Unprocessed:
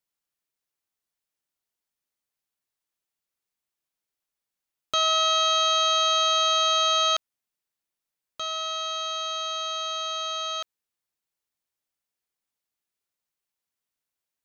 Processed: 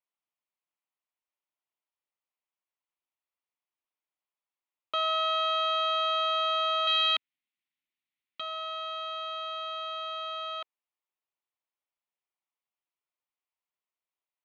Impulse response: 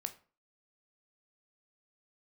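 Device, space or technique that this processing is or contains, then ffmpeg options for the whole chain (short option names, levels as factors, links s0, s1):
phone earpiece: -filter_complex "[0:a]asettb=1/sr,asplit=3[s0][s1][s2];[s0]atrim=end=6.874[s3];[s1]atrim=start=6.87:end=8.41,asetpts=PTS-STARTPTS,afade=t=in:d=0.004:c=qsin,afade=t=out:st=1.536:d=0.004:c=qsin,equalizer=f=125:t=o:w=1:g=12,equalizer=f=250:t=o:w=1:g=8,equalizer=f=500:t=o:w=1:g=-9,equalizer=f=1000:t=o:w=1:g=-7,equalizer=f=2000:t=o:w=1:g=7,equalizer=f=4000:t=o:w=1:g=7[s4];[s2]atrim=start=8.406[s5];[s3][s4]acrossfade=d=0.004:c1=hsin:c2=qsin[s6];[s6][s5]acrossfade=d=0.004:c1=qsin:c2=hsin,highpass=380,equalizer=f=450:t=q:w=4:g=-4,equalizer=f=1000:t=q:w=4:g=4,equalizer=f=1600:t=q:w=4:g=-7,lowpass=f=3100:w=0.5412,lowpass=f=3100:w=1.3066,volume=0.708"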